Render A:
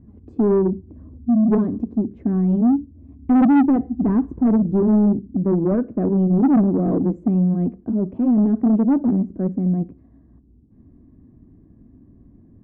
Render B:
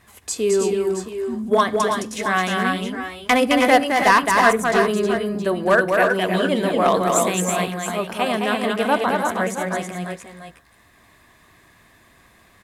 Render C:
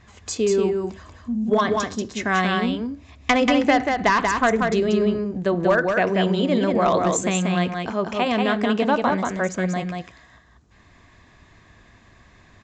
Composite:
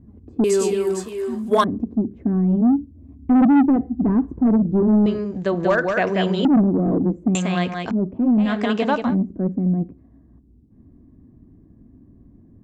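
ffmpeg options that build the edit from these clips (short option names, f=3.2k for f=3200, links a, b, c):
-filter_complex "[2:a]asplit=3[a][b][c];[0:a]asplit=5[d][e][f][g][h];[d]atrim=end=0.442[i];[1:a]atrim=start=0.438:end=1.642[j];[e]atrim=start=1.638:end=5.062[k];[a]atrim=start=5.058:end=6.452[l];[f]atrim=start=6.448:end=7.352[m];[b]atrim=start=7.348:end=7.912[n];[g]atrim=start=7.908:end=8.6[o];[c]atrim=start=8.36:end=9.17[p];[h]atrim=start=8.93[q];[i][j]acrossfade=d=0.004:c1=hsin:c2=hsin[r];[r][k]acrossfade=d=0.004:c1=hsin:c2=hsin[s];[s][l]acrossfade=d=0.004:c1=hsin:c2=hsin[t];[t][m]acrossfade=d=0.004:c1=hsin:c2=hsin[u];[u][n]acrossfade=d=0.004:c1=hsin:c2=hsin[v];[v][o]acrossfade=d=0.004:c1=hsin:c2=hsin[w];[w][p]acrossfade=d=0.24:c1=tri:c2=tri[x];[x][q]acrossfade=d=0.24:c1=tri:c2=tri"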